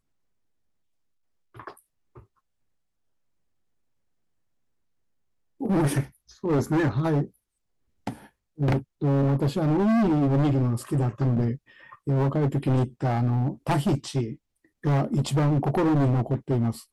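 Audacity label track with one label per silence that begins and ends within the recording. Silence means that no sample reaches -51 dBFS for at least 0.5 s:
2.230000	5.600000	silence
7.300000	8.070000	silence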